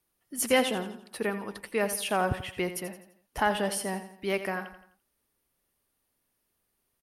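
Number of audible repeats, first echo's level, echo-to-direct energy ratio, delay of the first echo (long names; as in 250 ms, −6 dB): 4, −11.5 dB, −10.5 dB, 85 ms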